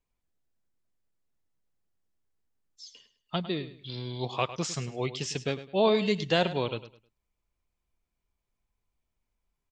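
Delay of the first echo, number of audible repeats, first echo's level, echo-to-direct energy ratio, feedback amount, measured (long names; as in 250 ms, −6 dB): 104 ms, 2, −14.0 dB, −13.5 dB, 27%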